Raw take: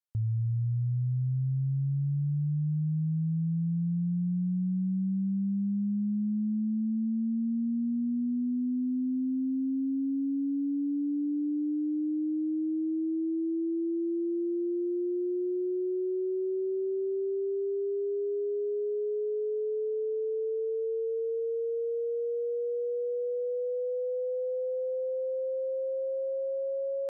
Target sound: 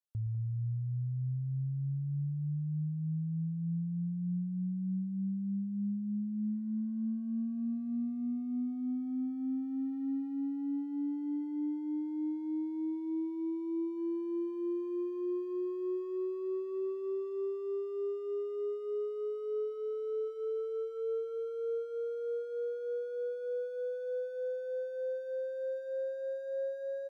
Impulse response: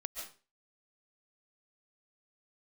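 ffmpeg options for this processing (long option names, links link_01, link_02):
-filter_complex "[0:a]asplit=3[link_01][link_02][link_03];[link_01]afade=type=out:start_time=13.76:duration=0.02[link_04];[link_02]equalizer=frequency=140:width=1.8:gain=6,afade=type=in:start_time=13.76:duration=0.02,afade=type=out:start_time=15.96:duration=0.02[link_05];[link_03]afade=type=in:start_time=15.96:duration=0.02[link_06];[link_04][link_05][link_06]amix=inputs=3:normalize=0,asplit=2[link_07][link_08];[link_08]adelay=200,highpass=300,lowpass=3400,asoftclip=type=hard:threshold=-33.5dB,volume=-6dB[link_09];[link_07][link_09]amix=inputs=2:normalize=0[link_10];[1:a]atrim=start_sample=2205,afade=type=out:start_time=0.17:duration=0.01,atrim=end_sample=7938[link_11];[link_10][link_11]afir=irnorm=-1:irlink=0,volume=-2.5dB"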